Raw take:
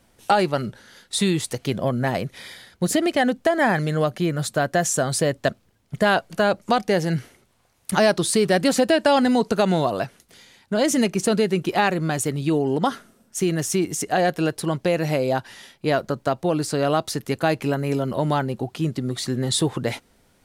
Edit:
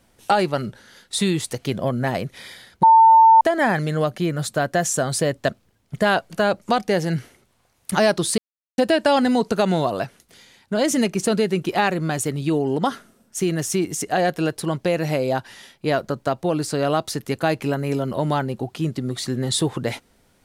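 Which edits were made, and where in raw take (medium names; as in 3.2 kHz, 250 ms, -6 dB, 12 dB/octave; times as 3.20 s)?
2.83–3.41 s: bleep 898 Hz -7.5 dBFS
8.38–8.78 s: mute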